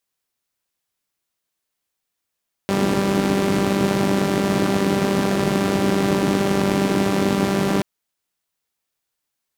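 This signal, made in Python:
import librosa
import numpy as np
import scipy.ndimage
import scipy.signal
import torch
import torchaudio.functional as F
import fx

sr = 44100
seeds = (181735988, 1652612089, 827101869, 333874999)

y = fx.engine_four(sr, seeds[0], length_s=5.13, rpm=5900, resonances_hz=(170.0, 270.0))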